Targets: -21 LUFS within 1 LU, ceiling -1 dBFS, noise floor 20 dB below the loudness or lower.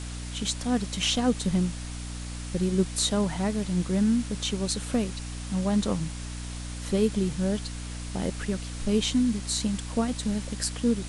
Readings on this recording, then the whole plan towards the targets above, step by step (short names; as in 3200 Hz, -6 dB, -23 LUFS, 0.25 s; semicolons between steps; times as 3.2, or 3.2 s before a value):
hum 60 Hz; harmonics up to 300 Hz; hum level -34 dBFS; noise floor -36 dBFS; noise floor target -48 dBFS; loudness -28.0 LUFS; peak -10.0 dBFS; loudness target -21.0 LUFS
-> de-hum 60 Hz, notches 5; denoiser 12 dB, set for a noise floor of -36 dBFS; gain +7 dB